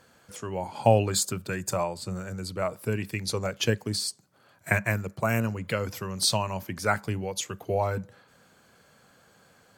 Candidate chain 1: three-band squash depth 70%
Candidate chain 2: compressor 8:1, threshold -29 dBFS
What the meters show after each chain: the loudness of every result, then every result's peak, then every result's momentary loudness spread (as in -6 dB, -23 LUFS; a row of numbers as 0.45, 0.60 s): -30.0, -34.5 LUFS; -8.5, -15.5 dBFS; 13, 4 LU